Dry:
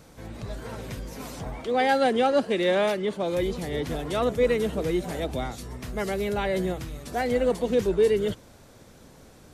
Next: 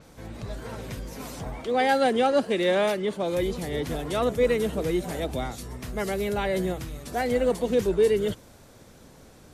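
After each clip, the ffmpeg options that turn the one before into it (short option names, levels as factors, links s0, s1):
-af "adynamicequalizer=threshold=0.00501:dfrequency=7300:dqfactor=0.7:tfrequency=7300:tqfactor=0.7:attack=5:release=100:ratio=0.375:range=2:mode=boostabove:tftype=highshelf"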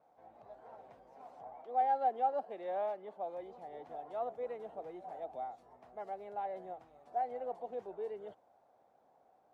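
-af "bandpass=f=750:t=q:w=6.1:csg=0,volume=0.668"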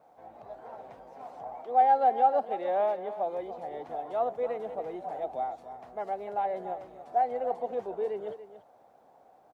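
-af "aecho=1:1:286:0.237,volume=2.82"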